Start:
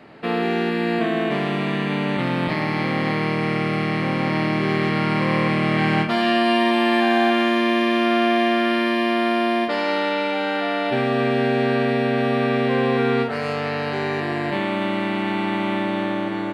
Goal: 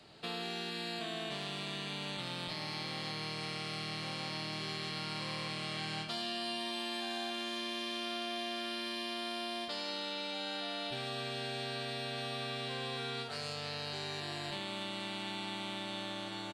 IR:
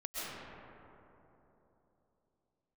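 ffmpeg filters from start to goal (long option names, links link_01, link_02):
-filter_complex "[0:a]equalizer=frequency=125:width_type=o:width=1:gain=-3,equalizer=frequency=250:width_type=o:width=1:gain=-11,equalizer=frequency=500:width_type=o:width=1:gain=-6,equalizer=frequency=1000:width_type=o:width=1:gain=-6,equalizer=frequency=2000:width_type=o:width=1:gain=-11,equalizer=frequency=4000:width_type=o:width=1:gain=8,equalizer=frequency=8000:width_type=o:width=1:gain=9,acrossover=split=280|590[link_01][link_02][link_03];[link_01]acompressor=threshold=-42dB:ratio=4[link_04];[link_02]acompressor=threshold=-47dB:ratio=4[link_05];[link_03]acompressor=threshold=-33dB:ratio=4[link_06];[link_04][link_05][link_06]amix=inputs=3:normalize=0,asplit=2[link_07][link_08];[link_08]aecho=0:1:565:0.0794[link_09];[link_07][link_09]amix=inputs=2:normalize=0,volume=-5dB"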